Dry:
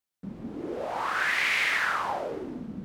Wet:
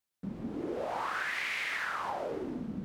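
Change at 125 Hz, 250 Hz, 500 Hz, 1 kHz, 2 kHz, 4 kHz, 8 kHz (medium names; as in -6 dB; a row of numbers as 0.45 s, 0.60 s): -1.0 dB, -1.0 dB, -3.0 dB, -5.5 dB, -8.5 dB, -8.5 dB, -8.0 dB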